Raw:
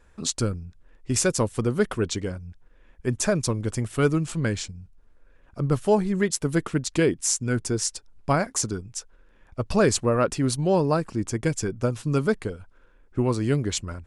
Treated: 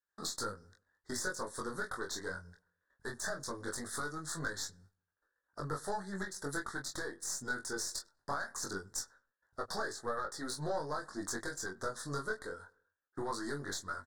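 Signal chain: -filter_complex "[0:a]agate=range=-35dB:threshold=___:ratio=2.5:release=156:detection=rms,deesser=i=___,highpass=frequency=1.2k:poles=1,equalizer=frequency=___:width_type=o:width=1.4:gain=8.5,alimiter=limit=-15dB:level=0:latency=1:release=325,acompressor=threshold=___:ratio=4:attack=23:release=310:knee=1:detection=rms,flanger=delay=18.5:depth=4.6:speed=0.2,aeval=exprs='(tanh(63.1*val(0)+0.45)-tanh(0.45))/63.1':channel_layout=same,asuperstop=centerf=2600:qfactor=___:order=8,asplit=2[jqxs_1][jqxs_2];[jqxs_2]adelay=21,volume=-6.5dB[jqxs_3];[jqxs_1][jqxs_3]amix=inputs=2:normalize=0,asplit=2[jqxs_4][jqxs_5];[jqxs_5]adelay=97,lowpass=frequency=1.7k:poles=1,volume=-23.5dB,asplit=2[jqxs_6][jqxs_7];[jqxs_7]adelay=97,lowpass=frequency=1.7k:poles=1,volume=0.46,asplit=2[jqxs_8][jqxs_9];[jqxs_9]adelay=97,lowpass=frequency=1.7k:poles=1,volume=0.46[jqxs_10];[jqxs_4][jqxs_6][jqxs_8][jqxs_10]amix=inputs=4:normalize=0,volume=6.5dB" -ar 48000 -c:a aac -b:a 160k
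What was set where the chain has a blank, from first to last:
-42dB, 0.6, 2k, -36dB, 1.3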